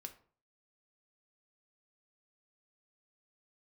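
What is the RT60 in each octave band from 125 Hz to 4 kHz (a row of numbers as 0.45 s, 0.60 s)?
0.55 s, 0.50 s, 0.45 s, 0.45 s, 0.35 s, 0.30 s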